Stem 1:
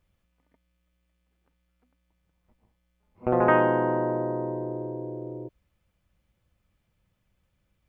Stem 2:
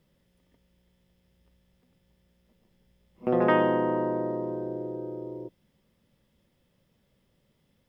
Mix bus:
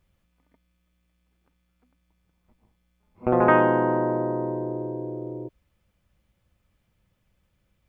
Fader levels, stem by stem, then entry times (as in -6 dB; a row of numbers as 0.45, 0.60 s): +2.5, -14.5 dB; 0.00, 0.00 s